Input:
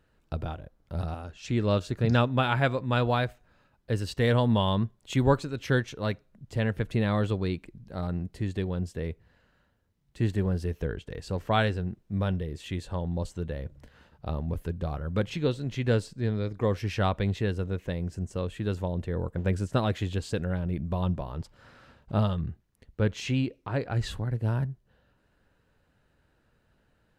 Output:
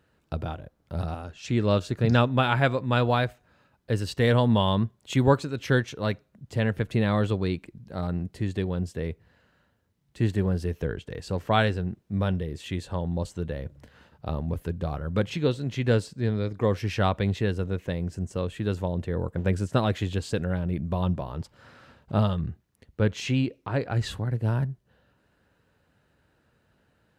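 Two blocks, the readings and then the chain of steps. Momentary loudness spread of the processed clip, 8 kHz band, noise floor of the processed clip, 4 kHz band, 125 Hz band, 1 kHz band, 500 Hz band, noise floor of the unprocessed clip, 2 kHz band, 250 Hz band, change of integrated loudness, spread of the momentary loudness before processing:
11 LU, +2.5 dB, −69 dBFS, +2.5 dB, +2.0 dB, +2.5 dB, +2.5 dB, −69 dBFS, +2.5 dB, +2.5 dB, +2.0 dB, 11 LU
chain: high-pass filter 67 Hz
level +2.5 dB

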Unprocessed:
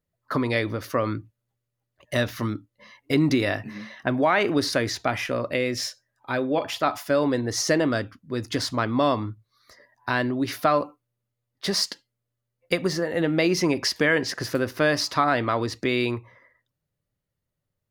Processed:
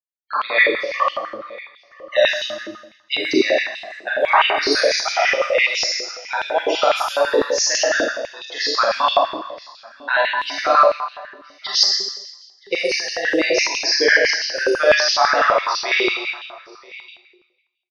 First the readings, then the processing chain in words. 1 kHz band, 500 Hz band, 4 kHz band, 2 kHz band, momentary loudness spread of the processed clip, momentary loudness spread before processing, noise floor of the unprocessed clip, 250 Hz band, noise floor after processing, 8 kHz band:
+8.5 dB, +6.0 dB, +10.5 dB, +10.0 dB, 17 LU, 9 LU, −82 dBFS, −4.5 dB, −56 dBFS, +8.5 dB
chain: noise reduction from a noise print of the clip's start 19 dB
low-pass that shuts in the quiet parts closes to 1,600 Hz, open at −22.5 dBFS
high-shelf EQ 2,600 Hz +10 dB
in parallel at +1.5 dB: speech leveller within 3 dB 0.5 s
on the sum: bit reduction 6 bits
spectral peaks only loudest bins 64
on a send: single-tap delay 971 ms −22.5 dB
on the sum: four-comb reverb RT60 1.1 s, combs from 28 ms, DRR −5.5 dB
high-pass on a step sequencer 12 Hz 400–3,000 Hz
level −10.5 dB

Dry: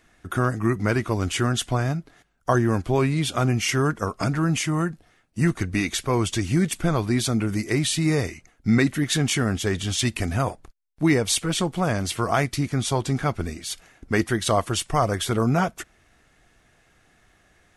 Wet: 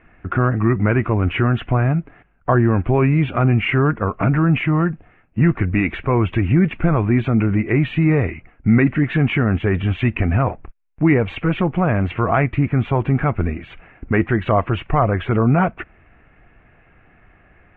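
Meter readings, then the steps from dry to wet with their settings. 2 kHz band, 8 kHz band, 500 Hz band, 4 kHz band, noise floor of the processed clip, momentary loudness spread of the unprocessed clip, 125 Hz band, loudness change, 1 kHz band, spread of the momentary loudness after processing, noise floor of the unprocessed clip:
+4.5 dB, below −40 dB, +4.5 dB, −8.0 dB, −53 dBFS, 7 LU, +7.5 dB, +5.5 dB, +4.5 dB, 6 LU, −61 dBFS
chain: elliptic low-pass filter 2,600 Hz, stop band 50 dB
low-shelf EQ 200 Hz +5 dB
in parallel at +2.5 dB: brickwall limiter −17.5 dBFS, peak gain reduction 11 dB

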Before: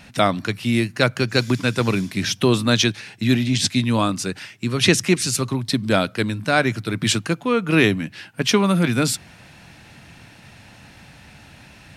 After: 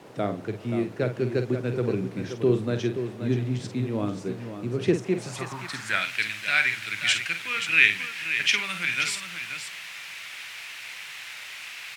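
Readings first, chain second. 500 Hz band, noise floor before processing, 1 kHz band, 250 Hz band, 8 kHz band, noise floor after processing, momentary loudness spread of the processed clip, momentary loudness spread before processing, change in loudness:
−6.0 dB, −47 dBFS, −10.5 dB, −9.5 dB, −10.5 dB, −41 dBFS, 15 LU, 7 LU, −5.5 dB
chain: octave-band graphic EQ 125/250/500/1,000/4,000/8,000 Hz +5/−7/−8/−9/−4/+5 dB
spring reverb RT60 3.5 s, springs 58 ms, chirp 60 ms, DRR 18 dB
bit-depth reduction 6 bits, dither triangular
multi-tap delay 48/528 ms −8.5/−9 dB
band-pass filter sweep 420 Hz → 2,300 Hz, 0:05.02–0:06.09
level +7 dB

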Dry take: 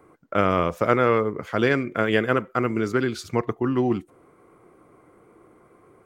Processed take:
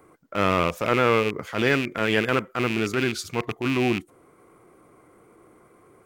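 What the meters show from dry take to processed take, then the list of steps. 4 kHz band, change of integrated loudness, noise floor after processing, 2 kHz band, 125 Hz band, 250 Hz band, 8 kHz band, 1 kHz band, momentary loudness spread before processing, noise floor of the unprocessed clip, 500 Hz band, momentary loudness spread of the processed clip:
+6.0 dB, −0.5 dB, −57 dBFS, +2.0 dB, −1.0 dB, −1.5 dB, +6.5 dB, −1.0 dB, 6 LU, −56 dBFS, −2.0 dB, 7 LU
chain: loose part that buzzes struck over −28 dBFS, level −19 dBFS
transient designer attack −7 dB, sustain −1 dB
high-shelf EQ 3,700 Hz +7.5 dB

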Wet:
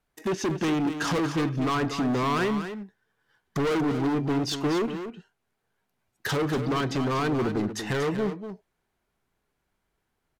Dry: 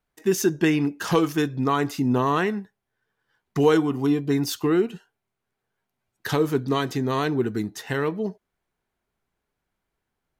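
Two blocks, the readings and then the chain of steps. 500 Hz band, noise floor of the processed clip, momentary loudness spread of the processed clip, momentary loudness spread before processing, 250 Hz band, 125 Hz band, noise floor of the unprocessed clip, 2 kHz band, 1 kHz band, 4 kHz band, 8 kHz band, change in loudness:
−4.5 dB, −79 dBFS, 11 LU, 8 LU, −3.0 dB, −2.0 dB, −82 dBFS, −1.5 dB, −2.0 dB, −0.5 dB, −4.5 dB, −3.5 dB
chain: treble cut that deepens with the level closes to 2,400 Hz, closed at −17 dBFS
hard clipping −26 dBFS, distortion −6 dB
single-tap delay 238 ms −9.5 dB
level +2.5 dB

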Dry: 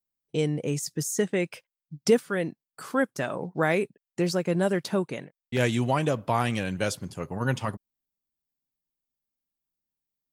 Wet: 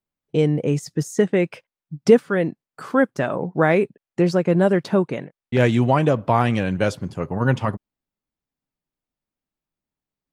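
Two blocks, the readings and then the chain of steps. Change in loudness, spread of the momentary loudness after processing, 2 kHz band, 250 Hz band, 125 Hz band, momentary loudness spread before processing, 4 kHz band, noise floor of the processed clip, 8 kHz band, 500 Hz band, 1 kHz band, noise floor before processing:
+7.0 dB, 11 LU, +4.5 dB, +8.0 dB, +8.0 dB, 11 LU, +0.5 dB, below −85 dBFS, can't be measured, +7.5 dB, +7.0 dB, below −85 dBFS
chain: low-pass filter 1,700 Hz 6 dB per octave
level +8 dB

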